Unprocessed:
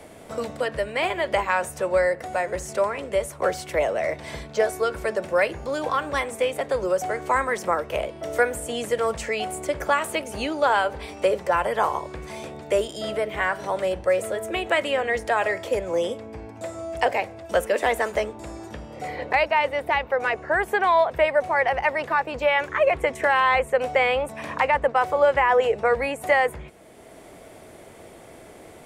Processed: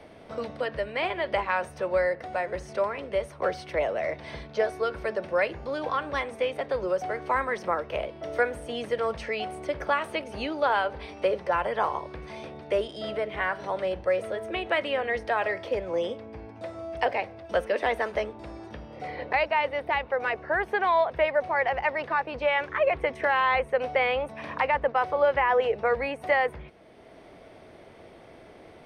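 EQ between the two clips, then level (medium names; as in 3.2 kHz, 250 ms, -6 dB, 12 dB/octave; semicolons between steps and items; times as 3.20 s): Savitzky-Golay filter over 15 samples; -4.0 dB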